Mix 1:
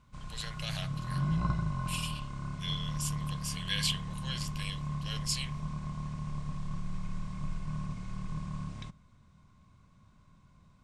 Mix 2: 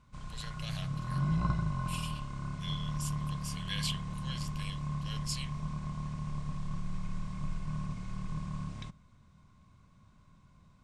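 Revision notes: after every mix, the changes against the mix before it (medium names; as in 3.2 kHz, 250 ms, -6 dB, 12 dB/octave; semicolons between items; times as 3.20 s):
speech -5.0 dB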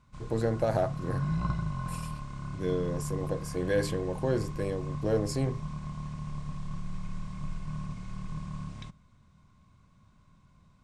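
speech: remove resonant high-pass 3 kHz, resonance Q 5.4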